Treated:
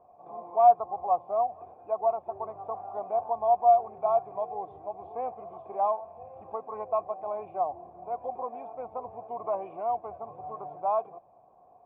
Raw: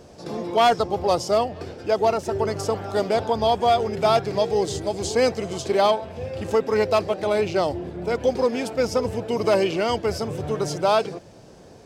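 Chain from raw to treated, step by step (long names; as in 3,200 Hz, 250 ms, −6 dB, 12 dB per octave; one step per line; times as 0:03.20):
formant resonators in series a
level +2.5 dB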